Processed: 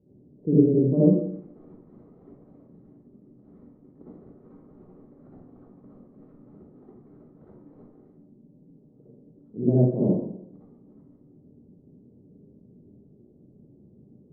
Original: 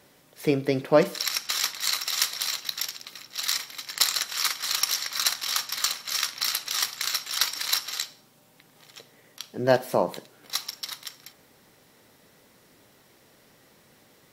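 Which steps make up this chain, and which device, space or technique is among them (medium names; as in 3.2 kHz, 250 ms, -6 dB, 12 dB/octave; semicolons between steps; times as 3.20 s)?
next room (low-pass 360 Hz 24 dB/octave; reverberation RT60 0.70 s, pre-delay 53 ms, DRR -9.5 dB)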